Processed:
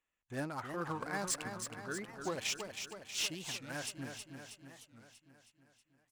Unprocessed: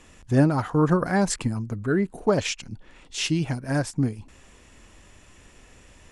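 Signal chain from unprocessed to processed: Wiener smoothing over 9 samples; pre-emphasis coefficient 0.97; gate with hold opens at -53 dBFS; high shelf 4600 Hz -11 dB; hard clip -34 dBFS, distortion -14 dB; feedback echo 0.319 s, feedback 59%, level -7 dB; record warp 45 rpm, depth 250 cents; gain +4.5 dB

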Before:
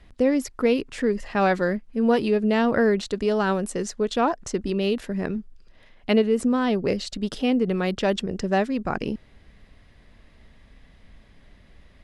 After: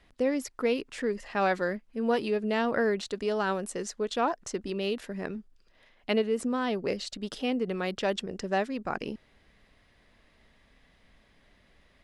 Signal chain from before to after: low shelf 230 Hz -10 dB; gain -4 dB

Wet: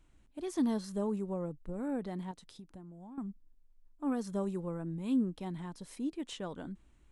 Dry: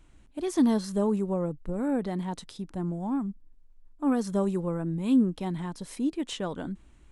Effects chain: 2.31–3.18 compressor 10:1, threshold -39 dBFS, peak gain reduction 14 dB; gain -8 dB

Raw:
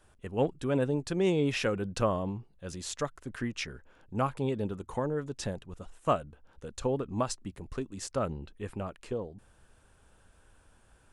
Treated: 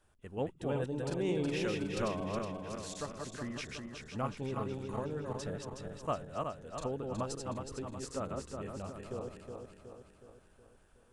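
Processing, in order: regenerating reverse delay 0.184 s, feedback 72%, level -3 dB; gain -8 dB

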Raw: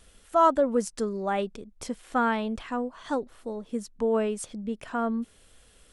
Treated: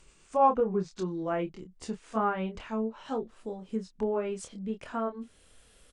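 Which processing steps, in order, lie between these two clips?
gliding pitch shift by -3.5 st ending unshifted; doubler 27 ms -7 dB; treble ducked by the level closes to 2000 Hz, closed at -21.5 dBFS; gain -2.5 dB

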